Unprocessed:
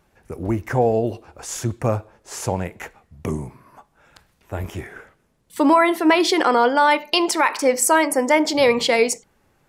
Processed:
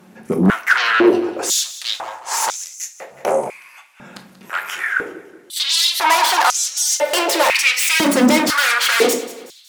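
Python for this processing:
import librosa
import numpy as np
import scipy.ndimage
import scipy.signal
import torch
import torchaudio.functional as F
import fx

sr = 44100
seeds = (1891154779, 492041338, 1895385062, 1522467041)

p1 = fx.tracing_dist(x, sr, depth_ms=0.091)
p2 = fx.fold_sine(p1, sr, drive_db=19, ceiling_db=-5.0)
p3 = p1 + F.gain(torch.from_numpy(p2), -9.0).numpy()
p4 = fx.echo_feedback(p3, sr, ms=185, feedback_pct=41, wet_db=-16.0)
p5 = fx.room_shoebox(p4, sr, seeds[0], volume_m3=360.0, walls='furnished', distance_m=0.96)
p6 = fx.filter_held_highpass(p5, sr, hz=2.0, low_hz=210.0, high_hz=6200.0)
y = F.gain(torch.from_numpy(p6), -4.0).numpy()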